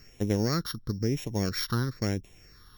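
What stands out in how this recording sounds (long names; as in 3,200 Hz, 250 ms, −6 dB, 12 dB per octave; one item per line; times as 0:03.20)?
a buzz of ramps at a fixed pitch in blocks of 8 samples
phaser sweep stages 6, 1 Hz, lowest notch 630–1,300 Hz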